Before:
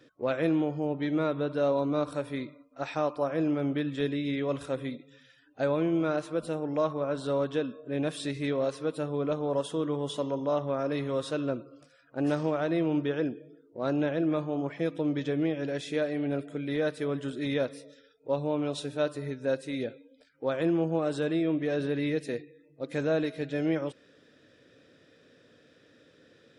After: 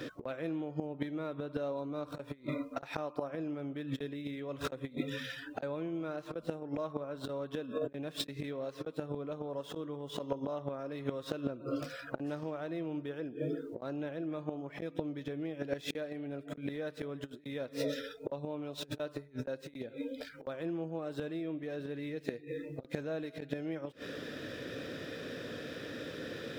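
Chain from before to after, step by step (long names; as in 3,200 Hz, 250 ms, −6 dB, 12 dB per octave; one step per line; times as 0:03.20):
running median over 5 samples
gate with flip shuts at −24 dBFS, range −28 dB
compressor whose output falls as the input rises −48 dBFS, ratio −0.5
level +12.5 dB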